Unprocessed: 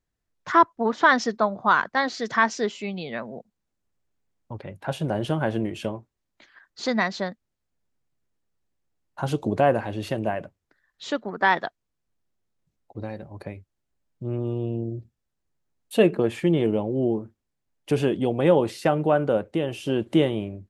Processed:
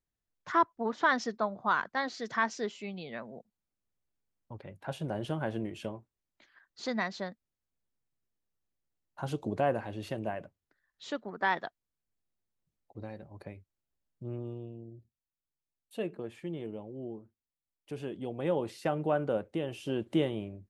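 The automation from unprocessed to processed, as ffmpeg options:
-af "afade=t=out:st=14.24:d=0.5:silence=0.375837,afade=t=in:st=17.95:d=1.16:silence=0.354813"

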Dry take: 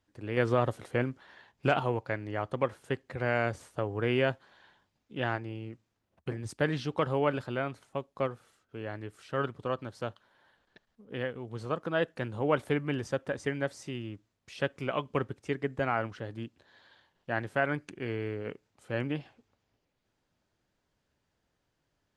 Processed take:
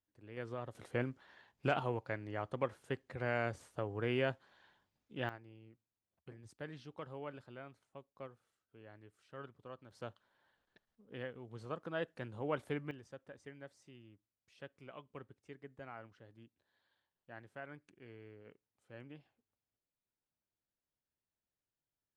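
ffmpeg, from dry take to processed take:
-af "asetnsamples=n=441:p=0,asendcmd='0.75 volume volume -7dB;5.29 volume volume -18dB;9.91 volume volume -10dB;12.91 volume volume -20dB',volume=0.141"

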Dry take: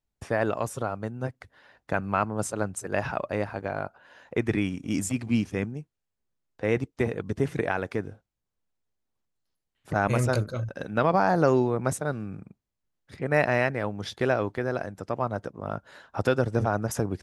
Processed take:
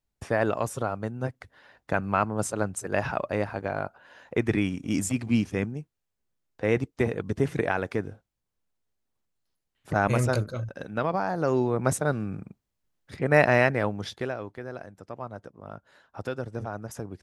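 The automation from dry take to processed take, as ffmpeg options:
-af "volume=3.76,afade=t=out:st=10.02:d=1.35:silence=0.398107,afade=t=in:st=11.37:d=0.62:silence=0.298538,afade=t=out:st=13.82:d=0.5:silence=0.237137"

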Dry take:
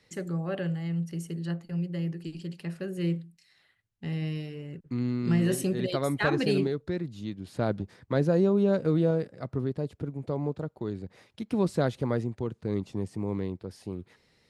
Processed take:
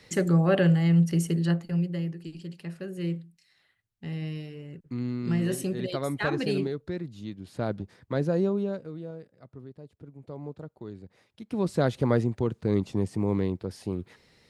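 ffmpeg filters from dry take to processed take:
-af "volume=29.9,afade=t=out:st=1.17:d=0.96:silence=0.251189,afade=t=out:st=8.45:d=0.43:silence=0.237137,afade=t=in:st=9.93:d=0.65:silence=0.421697,afade=t=in:st=11.41:d=0.7:silence=0.251189"

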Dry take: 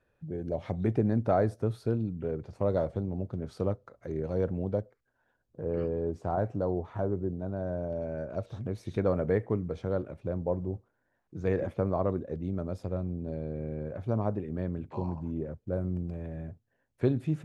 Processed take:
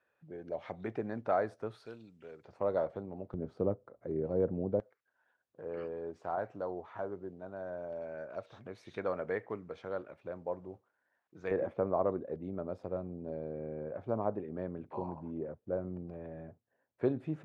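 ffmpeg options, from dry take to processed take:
-af "asetnsamples=n=441:p=0,asendcmd='1.86 bandpass f 4200;2.45 bandpass f 1100;3.34 bandpass f 390;4.8 bandpass f 1700;11.51 bandpass f 740',bandpass=f=1500:t=q:w=0.64:csg=0"

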